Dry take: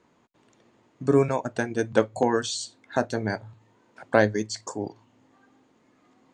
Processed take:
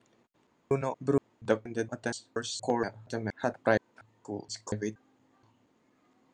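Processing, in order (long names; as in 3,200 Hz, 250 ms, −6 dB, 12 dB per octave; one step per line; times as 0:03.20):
slices reordered back to front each 236 ms, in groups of 3
level −6 dB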